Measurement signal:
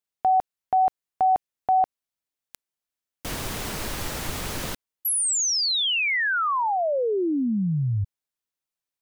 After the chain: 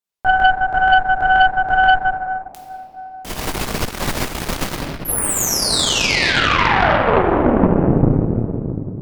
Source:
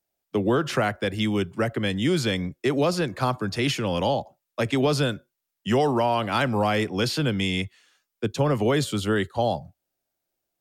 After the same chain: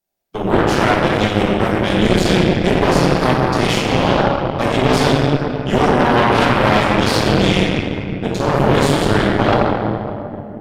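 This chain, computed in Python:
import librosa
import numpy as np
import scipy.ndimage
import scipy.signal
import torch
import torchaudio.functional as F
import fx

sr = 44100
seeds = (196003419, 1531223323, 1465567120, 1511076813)

y = fx.room_shoebox(x, sr, seeds[0], volume_m3=200.0, walls='hard', distance_m=1.2)
y = fx.cheby_harmonics(y, sr, harmonics=(6,), levels_db=(-10,), full_scale_db=0.5)
y = y * 10.0 ** (-2.5 / 20.0)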